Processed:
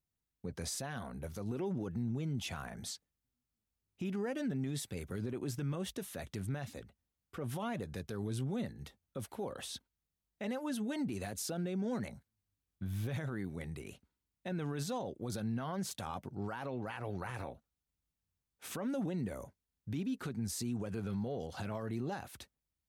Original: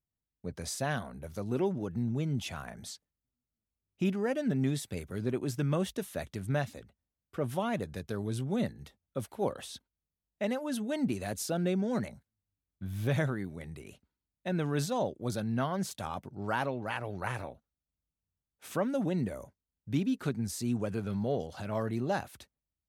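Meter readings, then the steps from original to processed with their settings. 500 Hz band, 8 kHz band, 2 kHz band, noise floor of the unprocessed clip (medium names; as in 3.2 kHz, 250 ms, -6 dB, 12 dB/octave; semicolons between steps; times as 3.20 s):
-7.5 dB, -2.0 dB, -7.0 dB, under -85 dBFS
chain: band-stop 610 Hz, Q 12; in parallel at -3 dB: compression, threshold -38 dBFS, peak gain reduction 13 dB; on the sum: peak limiter -26.5 dBFS, peak gain reduction 10.5 dB; trim -3.5 dB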